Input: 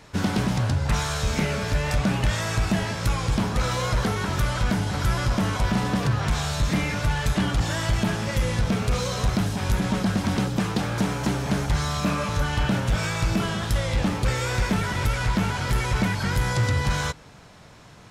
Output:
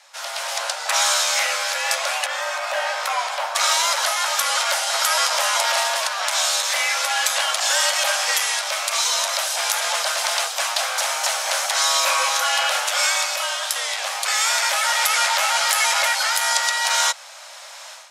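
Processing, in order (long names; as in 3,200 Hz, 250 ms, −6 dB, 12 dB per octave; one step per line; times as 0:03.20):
parametric band 9,100 Hz +8 dB 2.7 octaves, from 0:02.26 −5.5 dB, from 0:03.55 +10.5 dB
Butterworth high-pass 620 Hz 96 dB per octave
automatic gain control gain up to 13 dB
frequency shifter −66 Hz
level −2.5 dB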